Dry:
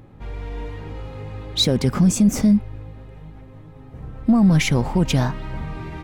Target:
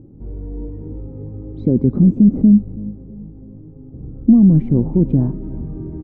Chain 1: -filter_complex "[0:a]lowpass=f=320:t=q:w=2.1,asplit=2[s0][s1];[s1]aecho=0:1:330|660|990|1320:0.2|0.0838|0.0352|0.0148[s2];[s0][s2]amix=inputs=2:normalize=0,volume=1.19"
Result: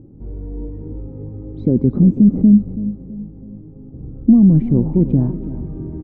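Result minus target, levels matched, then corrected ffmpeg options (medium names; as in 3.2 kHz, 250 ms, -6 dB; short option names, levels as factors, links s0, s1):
echo-to-direct +6 dB
-filter_complex "[0:a]lowpass=f=320:t=q:w=2.1,asplit=2[s0][s1];[s1]aecho=0:1:330|660|990:0.1|0.042|0.0176[s2];[s0][s2]amix=inputs=2:normalize=0,volume=1.19"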